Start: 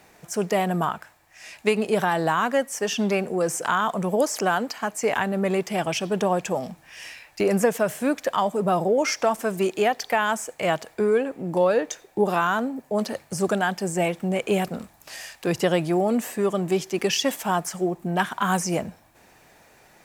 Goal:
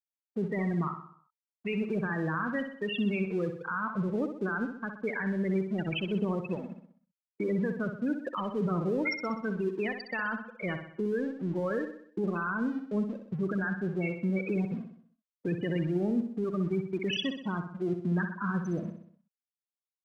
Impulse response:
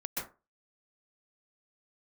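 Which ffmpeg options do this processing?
-filter_complex "[0:a]lowpass=4600,afftfilt=real='re*gte(hypot(re,im),0.126)':imag='im*gte(hypot(re,im),0.126)':win_size=1024:overlap=0.75,equalizer=frequency=730:width=1.4:gain=-14,acrossover=split=540|940[link_01][link_02][link_03];[link_01]aeval=exprs='sgn(val(0))*max(abs(val(0))-0.00299,0)':channel_layout=same[link_04];[link_02]acompressor=threshold=-54dB:ratio=6[link_05];[link_04][link_05][link_03]amix=inputs=3:normalize=0,alimiter=limit=-23.5dB:level=0:latency=1:release=23,asplit=2[link_06][link_07];[link_07]aecho=0:1:63|126|189|252|315|378:0.398|0.199|0.0995|0.0498|0.0249|0.0124[link_08];[link_06][link_08]amix=inputs=2:normalize=0"

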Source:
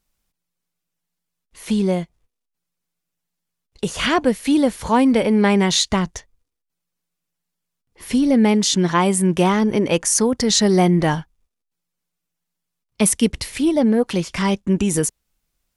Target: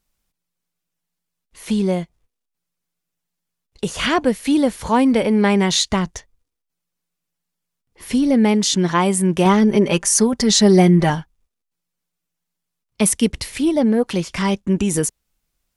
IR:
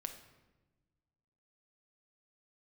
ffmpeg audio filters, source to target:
-filter_complex "[0:a]asettb=1/sr,asplit=3[link_01][link_02][link_03];[link_01]atrim=end=9.454[link_04];[link_02]atrim=start=9.45:end=11.1,asetpts=PTS-STARTPTS,afade=type=in:duration=0.004:curve=qsin,afade=type=out:start_time=1.646:duration=0.004:curve=qsin,aecho=1:1:5.1:0.64,atrim=end_sample=72765[link_05];[link_03]atrim=start=11.096[link_06];[link_04][link_05]acrossfade=duration=0.004:curve1=hsin:curve2=qsin[link_07];[link_07][link_06]acrossfade=duration=0.004:curve1=qsin:curve2=hsin"

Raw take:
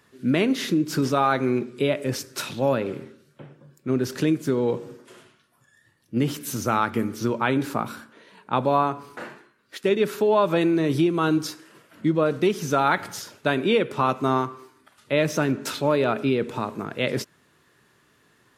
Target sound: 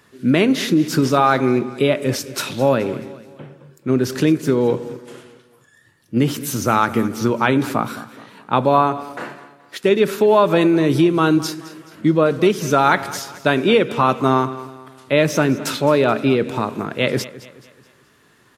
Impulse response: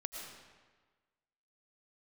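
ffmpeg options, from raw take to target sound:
-af "aecho=1:1:214|428|642|856:0.141|0.0607|0.0261|0.0112,volume=6dB"

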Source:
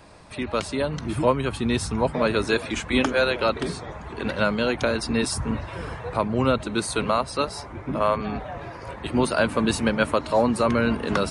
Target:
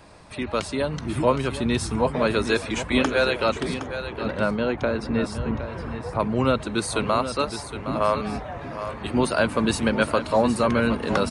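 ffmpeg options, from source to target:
ffmpeg -i in.wav -filter_complex "[0:a]asettb=1/sr,asplit=3[link_01][link_02][link_03];[link_01]atrim=end=3.744[link_04];[link_02]atrim=start=3.74:end=6.2,asetpts=PTS-STARTPTS,afade=type=in:duration=0.004:curve=qsin,afade=type=out:start_time=2.456:duration=0.004:curve=qsin,lowpass=frequency=1500:poles=1[link_05];[link_03]atrim=start=6.196[link_06];[link_04][link_05]acrossfade=duration=0.004:curve1=hsin:curve2=qsin[link_07];[link_07][link_06]acrossfade=duration=0.004:curve1=qsin:curve2=hsin,aecho=1:1:765:0.299" out.wav

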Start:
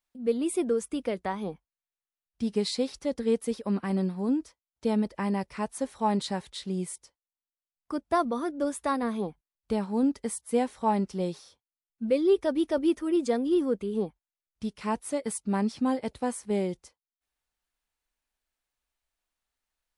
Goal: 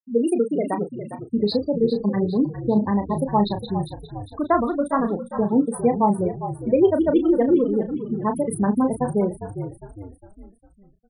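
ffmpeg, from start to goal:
ffmpeg -i in.wav -filter_complex "[0:a]afftfilt=real='re*gte(hypot(re,im),0.0501)':imag='im*gte(hypot(re,im),0.0501)':win_size=1024:overlap=0.75,atempo=1.8,asplit=2[link_01][link_02];[link_02]adelay=34,volume=-8dB[link_03];[link_01][link_03]amix=inputs=2:normalize=0,asplit=6[link_04][link_05][link_06][link_07][link_08][link_09];[link_05]adelay=405,afreqshift=-53,volume=-10.5dB[link_10];[link_06]adelay=810,afreqshift=-106,volume=-17.4dB[link_11];[link_07]adelay=1215,afreqshift=-159,volume=-24.4dB[link_12];[link_08]adelay=1620,afreqshift=-212,volume=-31.3dB[link_13];[link_09]adelay=2025,afreqshift=-265,volume=-38.2dB[link_14];[link_04][link_10][link_11][link_12][link_13][link_14]amix=inputs=6:normalize=0,volume=7dB" out.wav

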